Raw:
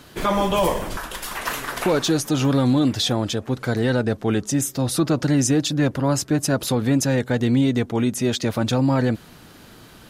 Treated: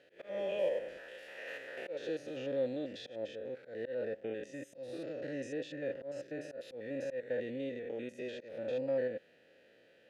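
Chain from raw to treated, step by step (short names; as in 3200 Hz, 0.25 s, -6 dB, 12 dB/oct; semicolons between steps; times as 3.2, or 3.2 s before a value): stepped spectrum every 0.1 s; vowel filter e; auto swell 0.17 s; gain -2.5 dB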